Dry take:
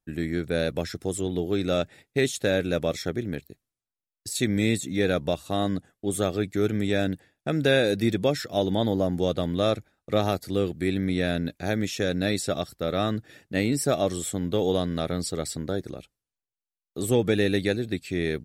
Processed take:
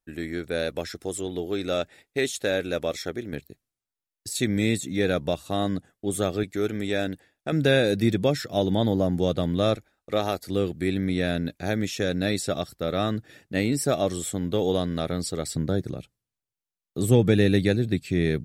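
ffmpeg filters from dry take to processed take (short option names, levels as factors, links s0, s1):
-af "asetnsamples=n=441:p=0,asendcmd='3.33 equalizer g 0;6.43 equalizer g -6.5;7.52 equalizer g 3.5;9.76 equalizer g -7.5;10.48 equalizer g 0.5;15.55 equalizer g 8.5',equalizer=f=130:t=o:w=1.8:g=-8.5"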